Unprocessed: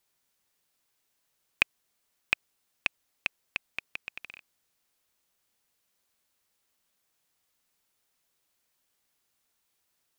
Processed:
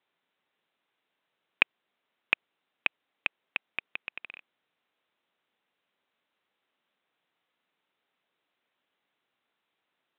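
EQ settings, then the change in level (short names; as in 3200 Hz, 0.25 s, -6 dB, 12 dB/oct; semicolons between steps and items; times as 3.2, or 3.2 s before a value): HPF 200 Hz 12 dB/oct; steep low-pass 3800 Hz 96 dB/oct; air absorption 90 m; +3.0 dB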